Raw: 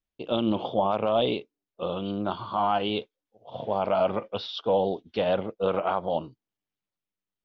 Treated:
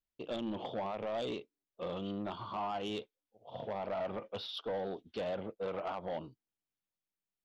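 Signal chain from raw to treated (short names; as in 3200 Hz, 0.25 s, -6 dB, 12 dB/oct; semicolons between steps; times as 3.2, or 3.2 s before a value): compressor 3:1, threshold -25 dBFS, peak gain reduction 5 dB; soft clip -25 dBFS, distortion -13 dB; gain -6 dB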